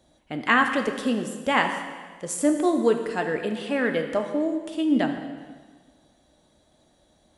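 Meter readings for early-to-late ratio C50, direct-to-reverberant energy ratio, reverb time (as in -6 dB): 7.0 dB, 4.5 dB, 1.5 s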